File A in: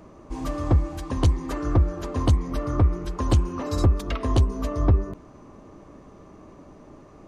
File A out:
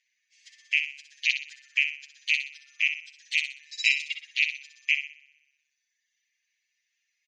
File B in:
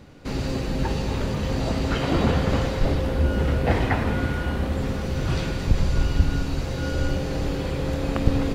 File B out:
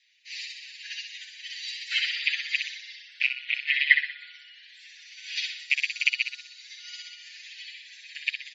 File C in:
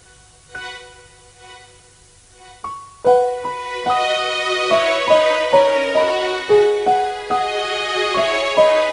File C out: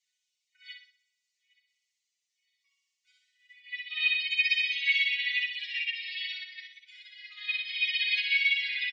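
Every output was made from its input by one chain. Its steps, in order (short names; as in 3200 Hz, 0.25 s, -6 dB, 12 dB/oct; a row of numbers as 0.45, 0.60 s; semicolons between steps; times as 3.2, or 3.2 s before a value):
rattling part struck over -15 dBFS, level -13 dBFS; steep high-pass 1900 Hz 48 dB/oct; spectral gate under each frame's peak -15 dB strong; reverb removal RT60 1.6 s; bell 7000 Hz +13 dB 1.2 oct; comb 7.2 ms, depth 98%; limiter -17 dBFS; air absorption 200 m; flutter echo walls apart 10.7 m, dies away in 1.1 s; upward expander 2.5:1, over -43 dBFS; match loudness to -27 LUFS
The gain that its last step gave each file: +11.0, +15.5, +1.0 dB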